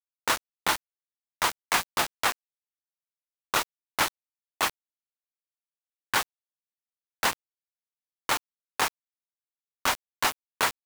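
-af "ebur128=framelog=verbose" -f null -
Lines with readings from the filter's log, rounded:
Integrated loudness:
  I:         -28.6 LUFS
  Threshold: -38.8 LUFS
Loudness range:
  LRA:         4.6 LU
  Threshold: -51.6 LUFS
  LRA low:   -34.1 LUFS
  LRA high:  -29.5 LUFS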